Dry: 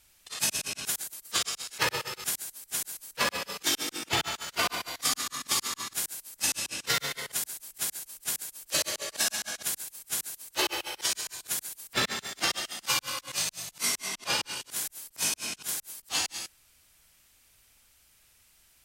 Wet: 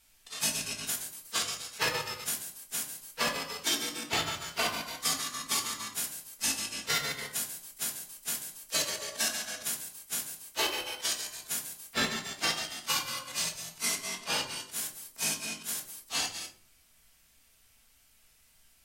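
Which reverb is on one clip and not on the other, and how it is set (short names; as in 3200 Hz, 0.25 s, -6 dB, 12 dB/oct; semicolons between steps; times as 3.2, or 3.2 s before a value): shoebox room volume 280 m³, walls furnished, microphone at 1.6 m; gain -4 dB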